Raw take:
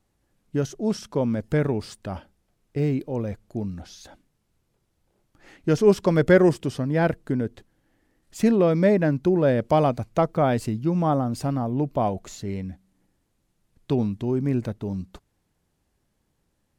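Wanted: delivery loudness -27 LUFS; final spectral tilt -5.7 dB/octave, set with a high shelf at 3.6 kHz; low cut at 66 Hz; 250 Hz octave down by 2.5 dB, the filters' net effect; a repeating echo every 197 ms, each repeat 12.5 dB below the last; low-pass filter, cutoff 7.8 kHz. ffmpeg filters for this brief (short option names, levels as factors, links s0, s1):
-af "highpass=66,lowpass=7800,equalizer=f=250:t=o:g=-3.5,highshelf=f=3600:g=-5,aecho=1:1:197|394|591:0.237|0.0569|0.0137,volume=0.794"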